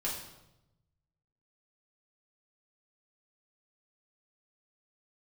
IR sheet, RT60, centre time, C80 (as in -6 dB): 0.90 s, 43 ms, 7.0 dB